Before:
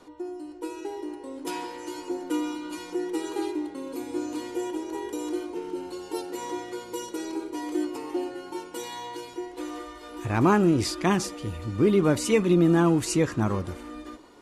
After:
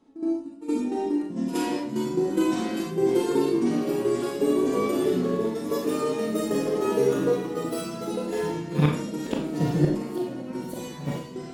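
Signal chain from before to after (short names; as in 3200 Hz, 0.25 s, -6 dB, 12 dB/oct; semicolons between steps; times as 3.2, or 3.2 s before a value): speed glide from 90% -> 160%; gate -36 dBFS, range -17 dB; bell 210 Hz +10 dB 1.7 oct; flipped gate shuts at -12 dBFS, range -28 dB; Schroeder reverb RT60 0.42 s, combs from 27 ms, DRR 0.5 dB; echoes that change speed 0.449 s, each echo -5 st, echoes 3, each echo -6 dB; pre-echo 68 ms -13.5 dB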